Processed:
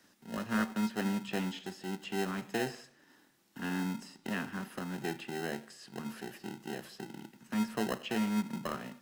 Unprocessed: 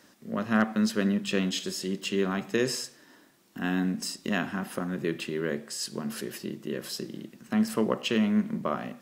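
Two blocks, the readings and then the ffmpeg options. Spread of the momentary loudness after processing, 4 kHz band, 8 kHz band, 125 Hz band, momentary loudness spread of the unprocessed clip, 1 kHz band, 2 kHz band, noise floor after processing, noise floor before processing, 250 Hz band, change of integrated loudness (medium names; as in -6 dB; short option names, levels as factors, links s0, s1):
11 LU, -9.5 dB, -10.5 dB, -7.0 dB, 10 LU, -4.0 dB, -6.0 dB, -66 dBFS, -59 dBFS, -7.0 dB, -7.5 dB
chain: -filter_complex "[0:a]acrossover=split=180|720|3000[s0][s1][s2][s3];[s1]acrusher=samples=38:mix=1:aa=0.000001[s4];[s3]acompressor=threshold=0.00316:ratio=6[s5];[s0][s4][s2][s5]amix=inputs=4:normalize=0,volume=0.473"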